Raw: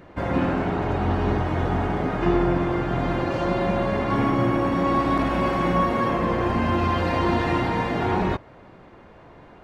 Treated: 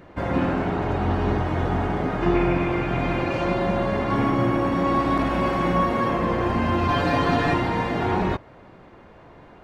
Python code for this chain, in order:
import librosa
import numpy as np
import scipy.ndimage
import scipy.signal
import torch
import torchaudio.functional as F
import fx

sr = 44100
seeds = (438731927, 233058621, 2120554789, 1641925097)

y = fx.peak_eq(x, sr, hz=2400.0, db=fx.line((2.34, 15.0), (3.53, 8.5)), octaves=0.28, at=(2.34, 3.53), fade=0.02)
y = fx.comb(y, sr, ms=7.0, depth=0.94, at=(6.88, 7.54))